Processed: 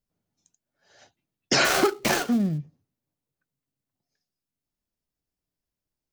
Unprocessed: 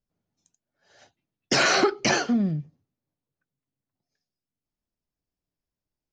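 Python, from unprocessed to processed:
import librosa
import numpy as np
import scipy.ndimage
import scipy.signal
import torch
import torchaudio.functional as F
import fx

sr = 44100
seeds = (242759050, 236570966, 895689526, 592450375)

y = fx.dead_time(x, sr, dead_ms=0.11, at=(1.64, 2.57), fade=0.02)
y = fx.high_shelf(y, sr, hz=6900.0, db=4.0)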